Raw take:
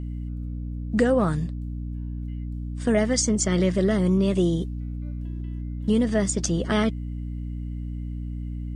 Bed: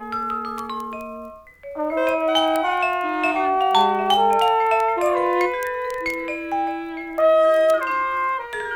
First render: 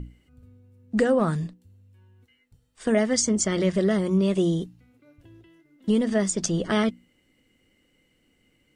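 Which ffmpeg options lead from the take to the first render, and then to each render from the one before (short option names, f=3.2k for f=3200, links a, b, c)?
-af "bandreject=f=60:t=h:w=6,bandreject=f=120:t=h:w=6,bandreject=f=180:t=h:w=6,bandreject=f=240:t=h:w=6,bandreject=f=300:t=h:w=6"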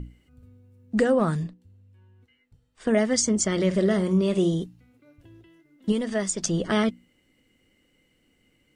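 -filter_complex "[0:a]asettb=1/sr,asplit=3[a][b][c];[a]atrim=end=1.434[d];[b]atrim=start=1.43:end=2.94,asetpts=PTS-STARTPTS,afade=t=in:d=0.004:c=qsin,afade=t=out:st=1.506:d=0.004:c=qsin,lowpass=f=3.8k:p=1[e];[c]atrim=start=2.936[f];[d][e]acrossfade=d=0.004:c1=hsin:c2=qsin[g];[g][f]acrossfade=d=0.004:c1=qsin:c2=hsin,asettb=1/sr,asplit=3[h][i][j];[h]atrim=end=3.664[k];[i]atrim=start=3.66:end=4.54,asetpts=PTS-STARTPTS,afade=t=in:d=0.004:c=qsin,afade=t=out:st=0.876:d=0.004:c=qsin,asplit=2[l][m];[m]adelay=49,volume=-11.5dB[n];[l][n]amix=inputs=2:normalize=0,atrim=end_sample=38808[o];[j]atrim=start=4.536[p];[k][o]acrossfade=d=0.004:c1=hsin:c2=qsin[q];[q][p]acrossfade=d=0.004:c1=qsin:c2=hsin,asettb=1/sr,asplit=3[r][s][t];[r]atrim=end=5.924[u];[s]atrim=start=5.92:end=6.47,asetpts=PTS-STARTPTS,afade=t=in:d=0.004:c=qsin,afade=t=out:st=0.546:d=0.004:c=qsin,equalizer=f=190:t=o:w=2.9:g=-5.5[v];[t]atrim=start=6.466[w];[u][v]acrossfade=d=0.004:c1=hsin:c2=qsin[x];[x][w]acrossfade=d=0.004:c1=qsin:c2=hsin"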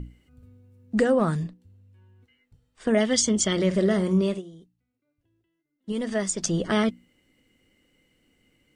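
-filter_complex "[0:a]asettb=1/sr,asplit=3[a][b][c];[a]atrim=end=3.004[d];[b]atrim=start=3:end=3.53,asetpts=PTS-STARTPTS,afade=t=in:d=0.004:c=qsin,afade=t=out:st=0.526:d=0.004:c=qsin,equalizer=f=3.3k:t=o:w=0.49:g=13[e];[c]atrim=start=3.526[f];[d][e]acrossfade=d=0.004:c1=hsin:c2=qsin[g];[g][f]acrossfade=d=0.004:c1=qsin:c2=hsin,asplit=3[h][i][j];[h]atrim=end=4.42,asetpts=PTS-STARTPTS,afade=t=out:st=4.21:d=0.21:c=qsin:silence=0.0891251[k];[i]atrim=start=4.42:end=5.86,asetpts=PTS-STARTPTS,volume=-21dB[l];[j]atrim=start=5.86,asetpts=PTS-STARTPTS,afade=t=in:d=0.21:c=qsin:silence=0.0891251[m];[k][l][m]concat=n=3:v=0:a=1"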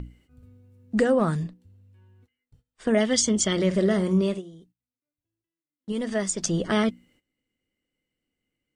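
-af "agate=range=-17dB:threshold=-58dB:ratio=16:detection=peak"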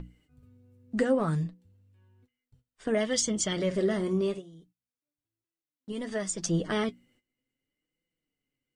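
-af "aeval=exprs='0.355*(cos(1*acos(clip(val(0)/0.355,-1,1)))-cos(1*PI/2))+0.0282*(cos(3*acos(clip(val(0)/0.355,-1,1)))-cos(3*PI/2))+0.0112*(cos(5*acos(clip(val(0)/0.355,-1,1)))-cos(5*PI/2))':c=same,flanger=delay=5.8:depth=2.6:regen=46:speed=0.62:shape=triangular"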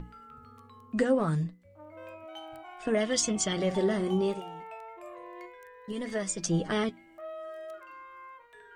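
-filter_complex "[1:a]volume=-25.5dB[a];[0:a][a]amix=inputs=2:normalize=0"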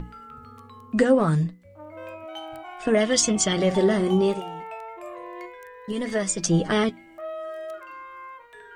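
-af "volume=7dB"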